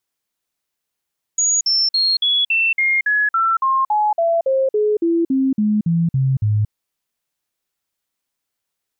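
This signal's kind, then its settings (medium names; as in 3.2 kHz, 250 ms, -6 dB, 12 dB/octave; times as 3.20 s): stepped sine 6.76 kHz down, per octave 3, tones 19, 0.23 s, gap 0.05 s -13.5 dBFS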